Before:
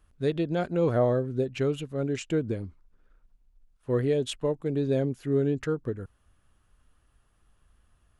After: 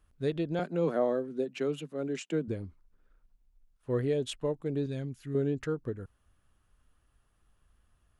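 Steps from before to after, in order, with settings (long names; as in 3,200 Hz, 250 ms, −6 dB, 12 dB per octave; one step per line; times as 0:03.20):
0:00.59–0:02.48: Butterworth high-pass 150 Hz 72 dB per octave
0:04.86–0:05.35: parametric band 530 Hz −12.5 dB 2 octaves
level −4 dB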